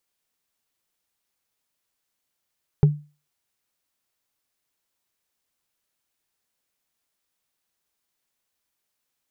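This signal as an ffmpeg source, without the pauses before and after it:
-f lavfi -i "aevalsrc='0.398*pow(10,-3*t/0.32)*sin(2*PI*148*t)+0.126*pow(10,-3*t/0.095)*sin(2*PI*408*t)+0.0398*pow(10,-3*t/0.042)*sin(2*PI*799.8*t)+0.0126*pow(10,-3*t/0.023)*sin(2*PI*1322.1*t)+0.00398*pow(10,-3*t/0.014)*sin(2*PI*1974.3*t)':d=0.45:s=44100"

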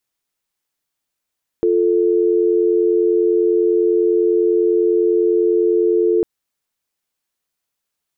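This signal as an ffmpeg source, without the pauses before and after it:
-f lavfi -i "aevalsrc='0.178*(sin(2*PI*350*t)+sin(2*PI*440*t))':d=4.6:s=44100"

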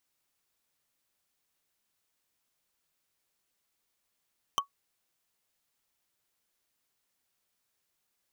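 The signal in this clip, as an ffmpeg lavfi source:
-f lavfi -i "aevalsrc='0.1*pow(10,-3*t/0.11)*sin(2*PI*1120*t)+0.0794*pow(10,-3*t/0.033)*sin(2*PI*3087.8*t)+0.0631*pow(10,-3*t/0.015)*sin(2*PI*6052.5*t)+0.0501*pow(10,-3*t/0.008)*sin(2*PI*10005*t)+0.0398*pow(10,-3*t/0.005)*sin(2*PI*14940.8*t)':d=0.45:s=44100"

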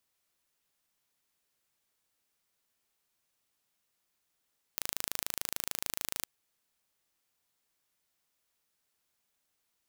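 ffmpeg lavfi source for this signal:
-f lavfi -i "aevalsrc='0.501*eq(mod(n,1646),0)':d=1.49:s=44100"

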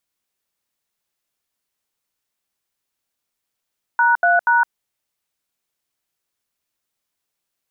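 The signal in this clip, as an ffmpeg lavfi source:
-f lavfi -i "aevalsrc='0.188*clip(min(mod(t,0.24),0.163-mod(t,0.24))/0.002,0,1)*(eq(floor(t/0.24),0)*(sin(2*PI*941*mod(t,0.24))+sin(2*PI*1477*mod(t,0.24)))+eq(floor(t/0.24),1)*(sin(2*PI*697*mod(t,0.24))+sin(2*PI*1477*mod(t,0.24)))+eq(floor(t/0.24),2)*(sin(2*PI*941*mod(t,0.24))+sin(2*PI*1477*mod(t,0.24))))':d=0.72:s=44100"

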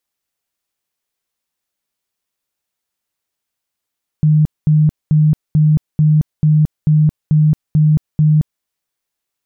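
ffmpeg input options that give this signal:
-f lavfi -i "aevalsrc='0.422*sin(2*PI*153*mod(t,0.44))*lt(mod(t,0.44),34/153)':d=4.4:s=44100"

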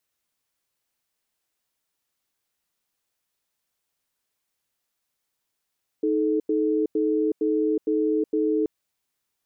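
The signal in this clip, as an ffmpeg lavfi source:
-f lavfi -i "aevalsrc='0.075*(sin(2*PI*313*t)+sin(2*PI*433*t))*clip(min(mod(t,0.46),0.37-mod(t,0.46))/0.005,0,1)':d=2.63:s=44100"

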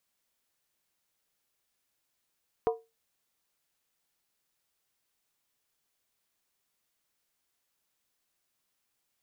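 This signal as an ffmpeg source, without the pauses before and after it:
-f lavfi -i "aevalsrc='0.0944*pow(10,-3*t/0.24)*sin(2*PI*454*t)+0.0501*pow(10,-3*t/0.19)*sin(2*PI*723.7*t)+0.0266*pow(10,-3*t/0.164)*sin(2*PI*969.7*t)+0.0141*pow(10,-3*t/0.158)*sin(2*PI*1042.4*t)+0.0075*pow(10,-3*t/0.147)*sin(2*PI*1204.5*t)':d=0.63:s=44100"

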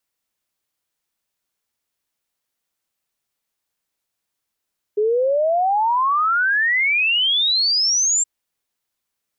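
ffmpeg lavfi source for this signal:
-f lavfi -i "aevalsrc='0.178*clip(min(t,3.27-t)/0.01,0,1)*sin(2*PI*410*3.27/log(7500/410)*(exp(log(7500/410)*t/3.27)-1))':d=3.27:s=44100"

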